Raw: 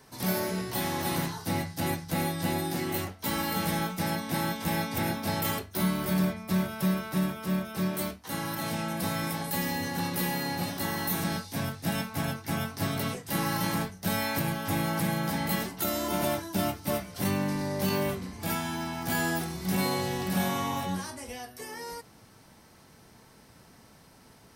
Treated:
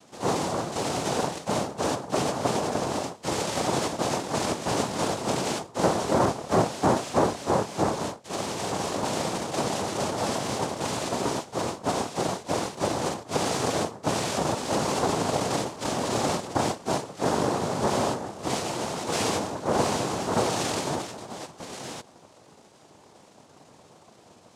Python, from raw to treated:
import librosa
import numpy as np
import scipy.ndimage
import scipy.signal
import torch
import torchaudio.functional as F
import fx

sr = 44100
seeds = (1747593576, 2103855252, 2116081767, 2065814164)

y = fx.air_absorb(x, sr, metres=410.0)
y = fx.noise_vocoder(y, sr, seeds[0], bands=2)
y = F.gain(torch.from_numpy(y), 4.5).numpy()